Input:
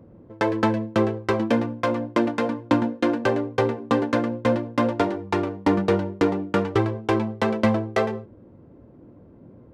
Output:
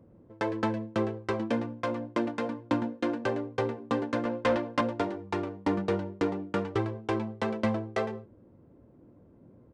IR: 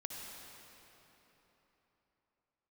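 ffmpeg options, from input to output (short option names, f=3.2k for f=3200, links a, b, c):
-filter_complex "[0:a]asettb=1/sr,asplit=3[a][b][c];[a]atrim=end=4.254[d];[b]atrim=start=4.25:end=4.81,asetpts=PTS-STARTPTS,afade=t=in:d=0.004:c=qsin,afade=t=out:st=0.556:d=0.004:c=qsin,asplit=2[e][f];[f]highpass=f=720:p=1,volume=17dB,asoftclip=type=tanh:threshold=-8dB[g];[e][g]amix=inputs=2:normalize=0,lowpass=f=5k:p=1,volume=-6dB[h];[c]atrim=start=4.806[i];[d][h]acrossfade=d=0.004:c1=hsin:c2=qsin[j];[j][i]acrossfade=d=0.004:c1=qsin:c2=hsin,aresample=22050,aresample=44100,volume=-8dB"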